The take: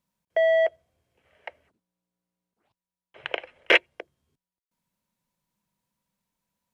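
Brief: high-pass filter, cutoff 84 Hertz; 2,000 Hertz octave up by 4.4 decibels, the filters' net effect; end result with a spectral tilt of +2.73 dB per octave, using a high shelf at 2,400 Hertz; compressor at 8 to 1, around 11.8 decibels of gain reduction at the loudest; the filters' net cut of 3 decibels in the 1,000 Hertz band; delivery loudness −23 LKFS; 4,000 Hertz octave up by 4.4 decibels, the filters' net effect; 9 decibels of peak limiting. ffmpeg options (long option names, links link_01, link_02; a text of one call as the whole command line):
ffmpeg -i in.wav -af "highpass=84,equalizer=frequency=1000:width_type=o:gain=-7,equalizer=frequency=2000:width_type=o:gain=6.5,highshelf=frequency=2400:gain=-4,equalizer=frequency=4000:width_type=o:gain=7.5,acompressor=threshold=-22dB:ratio=8,volume=8.5dB,alimiter=limit=-9dB:level=0:latency=1" out.wav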